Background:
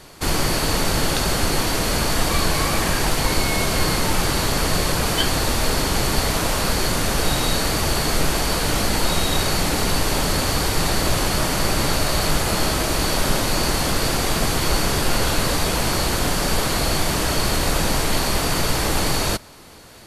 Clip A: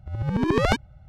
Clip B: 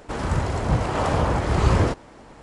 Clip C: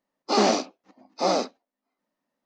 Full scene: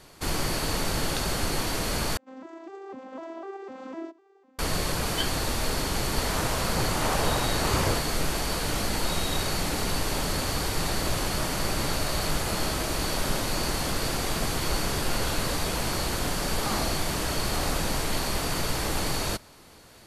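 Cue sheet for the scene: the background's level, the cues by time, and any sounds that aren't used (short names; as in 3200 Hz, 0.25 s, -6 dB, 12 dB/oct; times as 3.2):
background -7.5 dB
2.17 replace with B -15.5 dB + arpeggiated vocoder major triad, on C4, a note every 0.251 s
6.07 add B -4.5 dB + tilt +2 dB/oct
16.33 add C -8.5 dB + fixed phaser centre 1200 Hz, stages 4
not used: A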